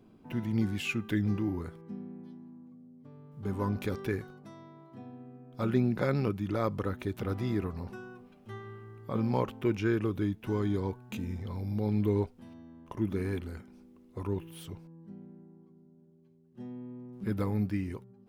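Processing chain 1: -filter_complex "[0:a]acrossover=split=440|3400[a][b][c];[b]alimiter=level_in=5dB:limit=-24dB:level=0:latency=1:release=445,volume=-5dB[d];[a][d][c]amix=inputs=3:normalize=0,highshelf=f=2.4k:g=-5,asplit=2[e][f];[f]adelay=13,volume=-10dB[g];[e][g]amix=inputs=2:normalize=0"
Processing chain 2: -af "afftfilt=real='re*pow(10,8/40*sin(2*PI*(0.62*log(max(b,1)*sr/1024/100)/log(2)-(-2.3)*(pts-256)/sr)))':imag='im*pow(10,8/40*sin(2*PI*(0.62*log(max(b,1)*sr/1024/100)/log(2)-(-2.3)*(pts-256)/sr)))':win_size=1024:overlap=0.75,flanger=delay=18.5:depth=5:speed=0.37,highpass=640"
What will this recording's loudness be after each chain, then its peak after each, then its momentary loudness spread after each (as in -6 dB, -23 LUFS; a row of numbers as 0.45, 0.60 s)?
-33.5, -44.5 LUFS; -16.0, -22.5 dBFS; 19, 20 LU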